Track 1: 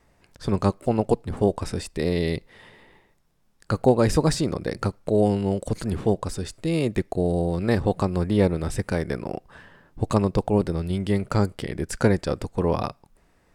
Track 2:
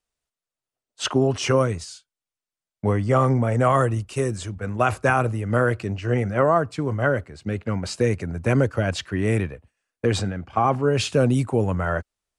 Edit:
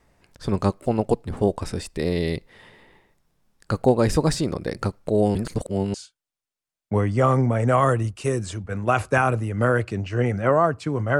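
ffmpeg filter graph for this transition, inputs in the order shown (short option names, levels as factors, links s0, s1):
-filter_complex "[0:a]apad=whole_dur=11.19,atrim=end=11.19,asplit=2[s0][s1];[s0]atrim=end=5.352[s2];[s1]atrim=start=5.348:end=5.942,asetpts=PTS-STARTPTS,areverse[s3];[1:a]atrim=start=1.858:end=7.11[s4];[s2][s3]acrossfade=d=0.004:c1=hsin:c2=hsin[s5];[s5][s4]acrossfade=d=0.004:c1=hsin:c2=hsin"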